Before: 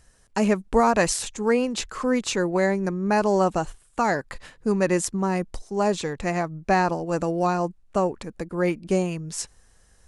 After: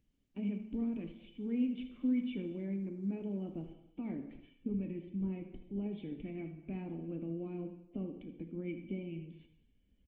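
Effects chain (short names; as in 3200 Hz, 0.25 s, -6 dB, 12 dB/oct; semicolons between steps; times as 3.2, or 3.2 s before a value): bin magnitudes rounded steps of 15 dB; recorder AGC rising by 5 dB/s; limiter -14 dBFS, peak gain reduction 6.5 dB; vocal tract filter i; on a send: early reflections 36 ms -17.5 dB, 78 ms -13.5 dB; on the sum: non-linear reverb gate 0.35 s falling, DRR 6.5 dB; gain -5.5 dB; Opus 20 kbps 48000 Hz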